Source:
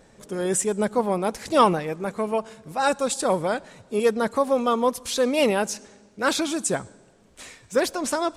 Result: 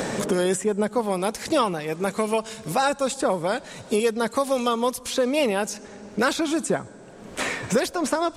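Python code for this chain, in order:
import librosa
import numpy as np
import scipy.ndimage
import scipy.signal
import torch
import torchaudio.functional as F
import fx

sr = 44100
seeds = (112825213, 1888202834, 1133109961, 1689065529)

y = fx.band_squash(x, sr, depth_pct=100)
y = y * librosa.db_to_amplitude(-1.0)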